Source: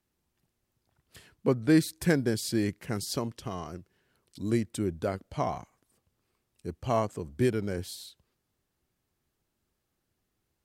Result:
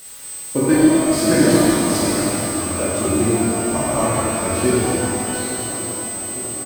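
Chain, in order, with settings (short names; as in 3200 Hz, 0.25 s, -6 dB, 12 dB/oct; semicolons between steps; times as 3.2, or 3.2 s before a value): slices in reverse order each 0.294 s, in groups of 3; low shelf 98 Hz +4.5 dB; notch 3100 Hz, Q 23; comb 3.4 ms, depth 47%; in parallel at -11 dB: requantised 6-bit, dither triangular; on the sum: tempo 1.6×; whine 8100 Hz -38 dBFS; on a send: darkening echo 0.859 s, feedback 75%, level -14.5 dB; on the sum: shimmer reverb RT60 2.9 s, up +12 st, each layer -8 dB, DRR -9 dB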